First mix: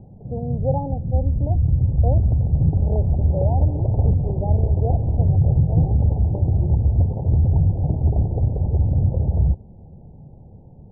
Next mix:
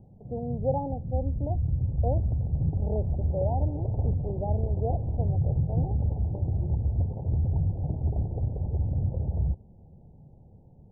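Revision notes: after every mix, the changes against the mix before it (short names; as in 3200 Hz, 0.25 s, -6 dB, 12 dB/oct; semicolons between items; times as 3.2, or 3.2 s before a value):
speech -3.5 dB; background -9.0 dB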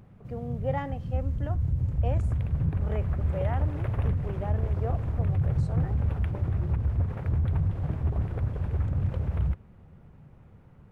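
speech -3.5 dB; master: remove steep low-pass 860 Hz 72 dB/oct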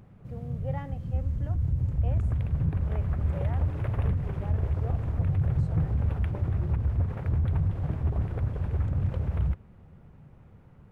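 speech -7.5 dB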